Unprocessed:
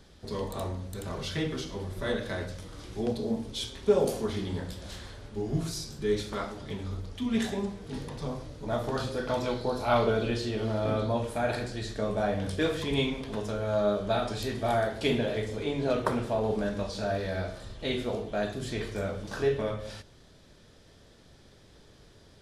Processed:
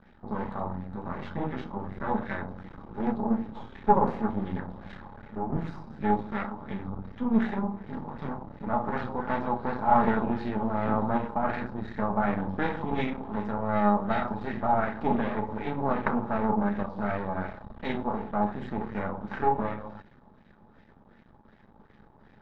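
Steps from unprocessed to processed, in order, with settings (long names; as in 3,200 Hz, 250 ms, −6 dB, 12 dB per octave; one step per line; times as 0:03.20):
half-wave rectification
hollow resonant body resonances 210/840/3,800 Hz, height 11 dB, ringing for 45 ms
auto-filter low-pass sine 2.7 Hz 990–2,000 Hz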